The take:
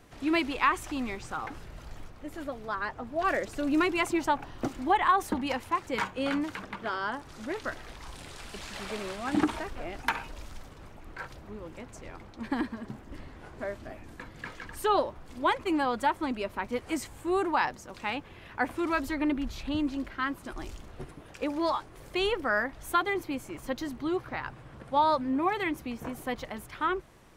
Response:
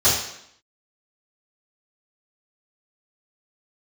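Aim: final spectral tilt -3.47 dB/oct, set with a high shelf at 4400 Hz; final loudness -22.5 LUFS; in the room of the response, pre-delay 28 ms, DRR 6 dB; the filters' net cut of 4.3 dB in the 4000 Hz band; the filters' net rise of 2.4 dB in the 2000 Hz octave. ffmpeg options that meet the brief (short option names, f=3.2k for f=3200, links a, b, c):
-filter_complex "[0:a]equalizer=f=2k:t=o:g=5.5,equalizer=f=4k:t=o:g=-4.5,highshelf=f=4.4k:g=-8.5,asplit=2[a][b];[1:a]atrim=start_sample=2205,adelay=28[c];[b][c]afir=irnorm=-1:irlink=0,volume=-24.5dB[d];[a][d]amix=inputs=2:normalize=0,volume=6.5dB"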